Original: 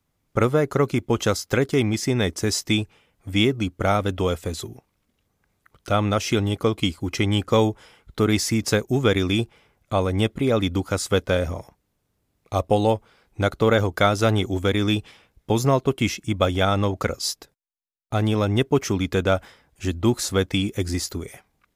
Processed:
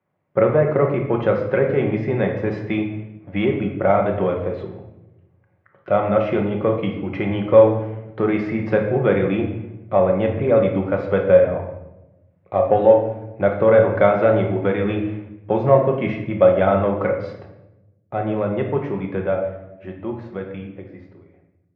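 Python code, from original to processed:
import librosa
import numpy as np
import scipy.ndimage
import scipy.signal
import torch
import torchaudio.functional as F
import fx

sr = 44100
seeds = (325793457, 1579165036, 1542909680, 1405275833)

p1 = fx.fade_out_tail(x, sr, length_s=4.9)
p2 = 10.0 ** (-16.5 / 20.0) * np.tanh(p1 / 10.0 ** (-16.5 / 20.0))
p3 = p1 + (p2 * librosa.db_to_amplitude(-4.0))
p4 = fx.cabinet(p3, sr, low_hz=110.0, low_slope=24, high_hz=2100.0, hz=(130.0, 250.0, 580.0, 1300.0), db=(-4, -9, 7, -4))
p5 = fx.room_shoebox(p4, sr, seeds[0], volume_m3=350.0, walls='mixed', distance_m=1.0)
y = p5 * librosa.db_to_amplitude(-2.5)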